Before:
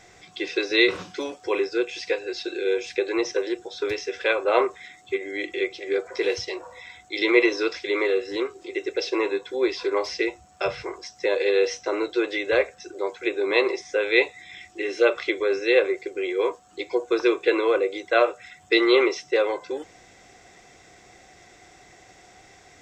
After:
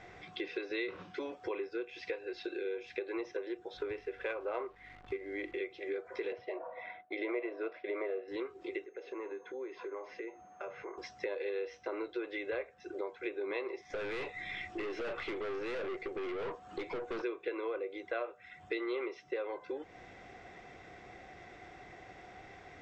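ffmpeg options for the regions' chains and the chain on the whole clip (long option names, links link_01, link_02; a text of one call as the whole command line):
ffmpeg -i in.wav -filter_complex "[0:a]asettb=1/sr,asplit=3[link_01][link_02][link_03];[link_01]atrim=end=3.774[link_04];[link_02]atrim=start=3.77:end=5.58,asetpts=PTS-STARTPTS,afade=type=in:duration=0.004:curve=qsin,afade=type=out:start_time=1.806:duration=0.004:curve=qsin,adynamicsmooth=sensitivity=1:basefreq=2700,aeval=exprs='val(0)+0.00141*(sin(2*PI*50*n/s)+sin(2*PI*2*50*n/s)/2+sin(2*PI*3*50*n/s)/3+sin(2*PI*4*50*n/s)/4+sin(2*PI*5*50*n/s)/5)':channel_layout=same,acrusher=bits=9:dc=4:mix=0:aa=0.000001[link_05];[link_03]atrim=start=5.576[link_06];[link_04][link_05]acrossfade=duration=0.004:curve1=hsin:curve2=qsin[link_07];[link_07][link_06]acrossfade=duration=0.004:curve1=qsin:curve2=hsin,asettb=1/sr,asplit=3[link_08][link_09][link_10];[link_08]atrim=end=6.324[link_11];[link_09]atrim=start=6.32:end=8.28,asetpts=PTS-STARTPTS,afade=type=in:duration=0.004:curve=qsin,afade=type=out:start_time=1.956:duration=0.004:curve=qsin,agate=range=-33dB:threshold=-43dB:ratio=3:release=100:detection=peak,highpass=200,lowpass=2300,equalizer=frequency=640:width_type=o:width=0.35:gain=14.5[link_12];[link_10]atrim=start=8.276[link_13];[link_11][link_12]acrossfade=duration=0.004:curve1=hsin:curve2=qsin[link_14];[link_14][link_13]acrossfade=duration=0.004:curve1=qsin:curve2=hsin,asettb=1/sr,asplit=3[link_15][link_16][link_17];[link_15]atrim=end=8.844[link_18];[link_16]atrim=start=8.84:end=10.98,asetpts=PTS-STARTPTS,afade=type=in:duration=0.004:curve=qsin,afade=type=out:start_time=2.136:duration=0.004:curve=qsin,acrossover=split=190 2300:gain=0.0891 1 0.178[link_19][link_20][link_21];[link_19][link_20][link_21]amix=inputs=3:normalize=0,acompressor=threshold=-45dB:ratio=2.5:attack=3.2:release=140:knee=1:detection=peak,aeval=exprs='val(0)+0.00126*sin(2*PI*6400*n/s)':channel_layout=same[link_22];[link_17]atrim=start=10.976[link_23];[link_18][link_22]acrossfade=duration=0.004:curve1=hsin:curve2=qsin[link_24];[link_24][link_23]acrossfade=duration=0.004:curve1=qsin:curve2=hsin,asettb=1/sr,asplit=3[link_25][link_26][link_27];[link_25]atrim=end=13.904[link_28];[link_26]atrim=start=13.9:end=17.22,asetpts=PTS-STARTPTS,afade=type=in:duration=0.004:curve=qsin,afade=type=out:start_time=3.316:duration=0.004:curve=qsin,aeval=exprs='(tanh(50.1*val(0)+0.3)-tanh(0.3))/50.1':channel_layout=same,acontrast=74[link_29];[link_27]atrim=start=17.216[link_30];[link_28][link_29]acrossfade=duration=0.004:curve1=hsin:curve2=qsin[link_31];[link_31][link_30]acrossfade=duration=0.004:curve1=qsin:curve2=hsin,lowpass=2600,acompressor=threshold=-38dB:ratio=4" out.wav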